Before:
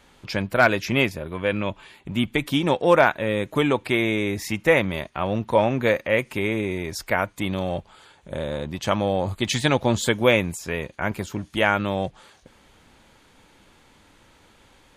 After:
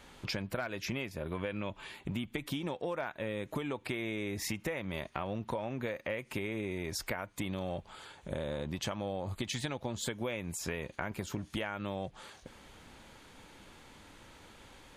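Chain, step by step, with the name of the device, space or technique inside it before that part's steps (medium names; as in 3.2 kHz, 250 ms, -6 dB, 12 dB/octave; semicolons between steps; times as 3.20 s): serial compression, peaks first (compression, threshold -28 dBFS, peak gain reduction 16 dB; compression 2.5:1, threshold -35 dBFS, peak gain reduction 7.5 dB)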